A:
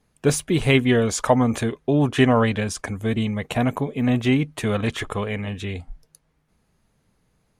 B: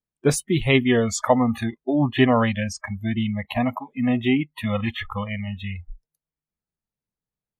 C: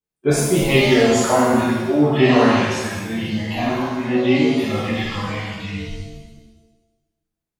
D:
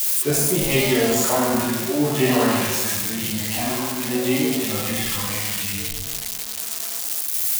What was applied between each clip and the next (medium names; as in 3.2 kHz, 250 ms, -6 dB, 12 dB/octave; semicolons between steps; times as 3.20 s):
spectral noise reduction 27 dB
pitch-shifted reverb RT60 1.2 s, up +7 st, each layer -8 dB, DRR -10 dB; trim -6 dB
zero-crossing glitches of -9 dBFS; trim -5 dB